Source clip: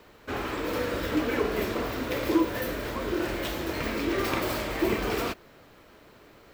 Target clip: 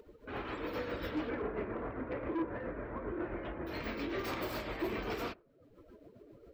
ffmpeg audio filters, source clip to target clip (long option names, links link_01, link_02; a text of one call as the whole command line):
ffmpeg -i in.wav -filter_complex "[0:a]asettb=1/sr,asplit=3[link_01][link_02][link_03];[link_01]atrim=end=1.294[link_04];[link_02]atrim=start=1.29:end=3.67,asetpts=PTS-STARTPTS,afade=type=in:duration=0.004:curve=qsin,afade=type=out:start_time=2.376:duration=0.004:curve=qsin,lowpass=1800[link_05];[link_03]atrim=start=3.666[link_06];[link_04][link_05]acrossfade=duration=0.004:curve1=hsin:curve2=qsin[link_07];[link_07][link_06]acrossfade=duration=0.004:curve1=qsin:curve2=hsin,afftdn=noise_reduction=24:noise_floor=-45,acompressor=mode=upward:threshold=-37dB:ratio=2.5,asoftclip=type=tanh:threshold=-23dB,tremolo=f=7.4:d=0.42,volume=-5.5dB" out.wav